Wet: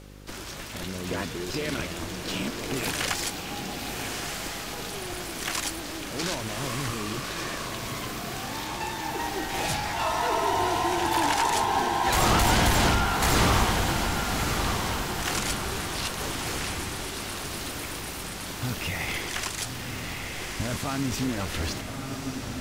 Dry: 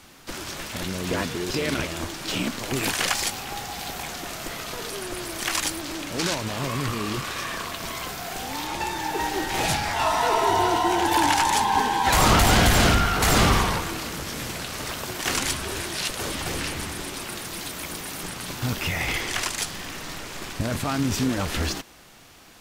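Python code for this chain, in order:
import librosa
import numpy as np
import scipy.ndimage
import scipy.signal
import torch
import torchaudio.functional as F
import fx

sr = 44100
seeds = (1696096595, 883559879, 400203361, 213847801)

y = fx.echo_diffused(x, sr, ms=1204, feedback_pct=49, wet_db=-5)
y = fx.dmg_buzz(y, sr, base_hz=50.0, harmonics=11, level_db=-42.0, tilt_db=-4, odd_only=False)
y = y * librosa.db_to_amplitude(-4.5)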